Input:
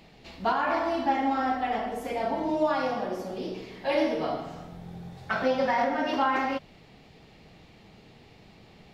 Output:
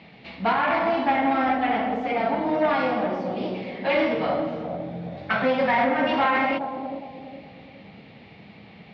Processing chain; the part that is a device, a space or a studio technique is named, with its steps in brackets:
analogue delay pedal into a guitar amplifier (bucket-brigade delay 412 ms, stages 2,048, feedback 40%, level −7 dB; tube saturation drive 21 dB, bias 0.4; loudspeaker in its box 100–4,000 Hz, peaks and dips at 200 Hz +4 dB, 370 Hz −5 dB, 2,200 Hz +6 dB)
level +6.5 dB

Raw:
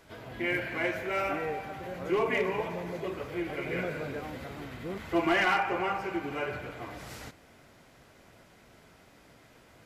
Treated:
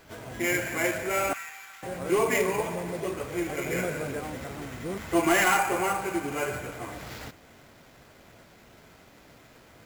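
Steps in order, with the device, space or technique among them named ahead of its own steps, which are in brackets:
0:01.33–0:01.83: Bessel high-pass filter 1,700 Hz, order 6
early companding sampler (sample-rate reduction 9,200 Hz, jitter 0%; log-companded quantiser 6 bits)
level +3.5 dB

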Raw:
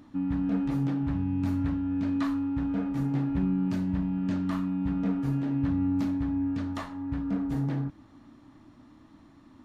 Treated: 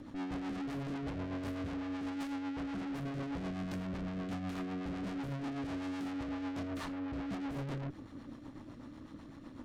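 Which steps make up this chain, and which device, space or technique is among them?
overdriven rotary cabinet (tube saturation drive 46 dB, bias 0.7; rotating-speaker cabinet horn 8 Hz)
level +9.5 dB

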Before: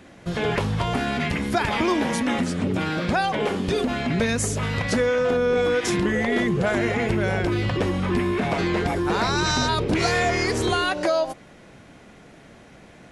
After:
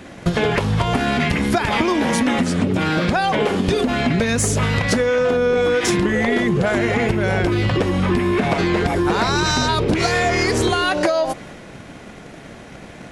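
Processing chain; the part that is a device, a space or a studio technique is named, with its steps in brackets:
drum-bus smash (transient designer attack +8 dB, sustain +3 dB; downward compressor, threshold −22 dBFS, peak gain reduction 9 dB; soft clipping −16 dBFS, distortion −22 dB)
level +8.5 dB

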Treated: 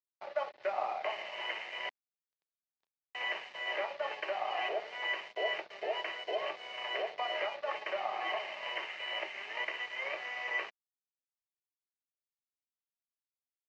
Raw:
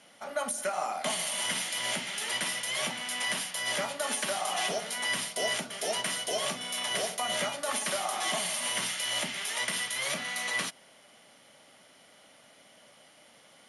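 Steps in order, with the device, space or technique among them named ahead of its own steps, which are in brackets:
brick-wall band-pass 320–3,100 Hz
0:01.89–0:03.15: drawn EQ curve 260 Hz 0 dB, 430 Hz −25 dB, 1,100 Hz −17 dB, 2,400 Hz −28 dB
blown loudspeaker (dead-zone distortion −47 dBFS; loudspeaker in its box 210–4,900 Hz, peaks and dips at 270 Hz −6 dB, 1,400 Hz −8 dB, 3,000 Hz −5 dB)

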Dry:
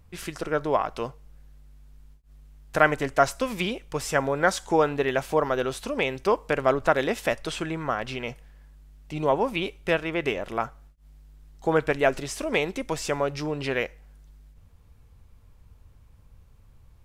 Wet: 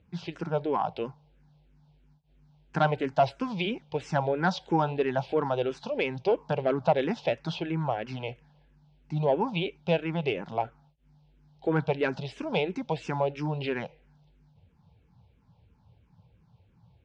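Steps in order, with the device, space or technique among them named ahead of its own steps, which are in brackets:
barber-pole phaser into a guitar amplifier (frequency shifter mixed with the dry sound −3 Hz; soft clipping −14.5 dBFS, distortion −18 dB; loudspeaker in its box 98–4,600 Hz, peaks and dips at 120 Hz +5 dB, 170 Hz +10 dB, 850 Hz +7 dB, 1,200 Hz −8 dB, 1,900 Hz −7 dB)

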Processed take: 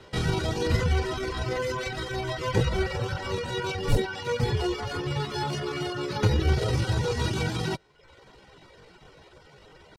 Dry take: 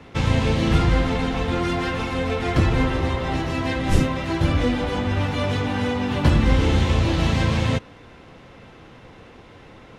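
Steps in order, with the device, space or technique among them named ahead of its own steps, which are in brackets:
0:06.13–0:06.62: notch filter 5,500 Hz, Q 7.2
low-pass filter 8,600 Hz 12 dB per octave
comb filter 3.1 ms, depth 50%
chipmunk voice (pitch shifter +6.5 semitones)
reverb reduction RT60 0.73 s
level −5.5 dB

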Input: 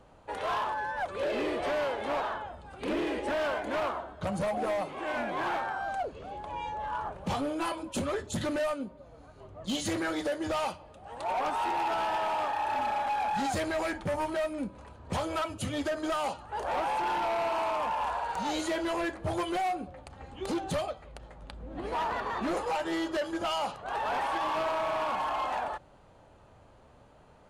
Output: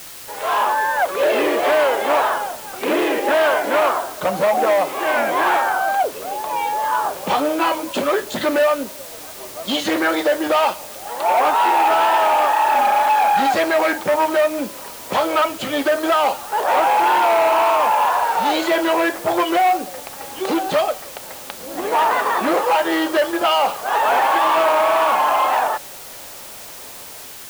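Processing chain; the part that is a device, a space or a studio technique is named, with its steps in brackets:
dictaphone (band-pass filter 360–3,900 Hz; automatic gain control gain up to 15 dB; tape wow and flutter; white noise bed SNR 18 dB)

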